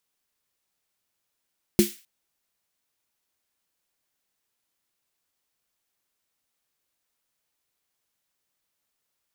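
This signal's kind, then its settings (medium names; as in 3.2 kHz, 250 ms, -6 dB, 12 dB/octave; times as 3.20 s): snare drum length 0.26 s, tones 210 Hz, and 350 Hz, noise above 1.9 kHz, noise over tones -10.5 dB, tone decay 0.17 s, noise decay 0.38 s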